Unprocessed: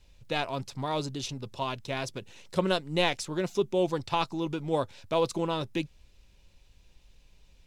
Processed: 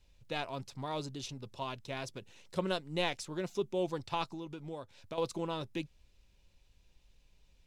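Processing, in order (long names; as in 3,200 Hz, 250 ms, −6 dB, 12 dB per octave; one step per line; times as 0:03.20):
0:04.33–0:05.18: downward compressor 6 to 1, threshold −33 dBFS, peak gain reduction 10.5 dB
level −7 dB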